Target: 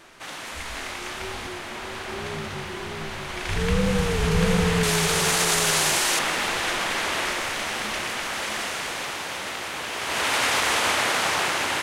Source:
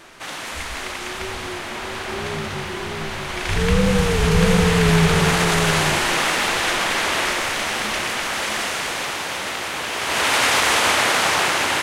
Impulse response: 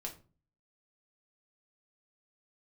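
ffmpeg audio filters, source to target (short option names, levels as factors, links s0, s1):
-filter_complex "[0:a]asettb=1/sr,asplit=3[s0][s1][s2];[s0]atrim=end=0.634[s3];[s1]atrim=start=0.63:end=1.47,asetpts=PTS-STARTPTS,afade=t=in:d=0.004:c=qsin,afade=t=out:st=0.836:d=0.004:c=qsin,asplit=2[s4][s5];[s5]adelay=23,volume=0.562[s6];[s4][s6]amix=inputs=2:normalize=0,atrim=end_sample=37044[s7];[s2]atrim=start=1.466[s8];[s3][s7]acrossfade=d=0.004:c1=hsin:c2=qsin[s9];[s9][s8]acrossfade=d=0.004:c1=qsin:c2=hsin,asettb=1/sr,asplit=3[s10][s11][s12];[s10]atrim=end=4.834[s13];[s11]atrim=start=4.83:end=6.19,asetpts=PTS-STARTPTS,afade=t=in:d=0.004:c=qsin,afade=t=out:st=1.356:d=0.004:c=qsin,bass=f=250:g=-8,treble=f=4000:g=10[s14];[s12]atrim=start=6.186[s15];[s13][s14]acrossfade=d=0.004:c1=hsin:c2=qsin[s16];[s16][s15]acrossfade=d=0.004:c1=qsin:c2=hsin,volume=0.562"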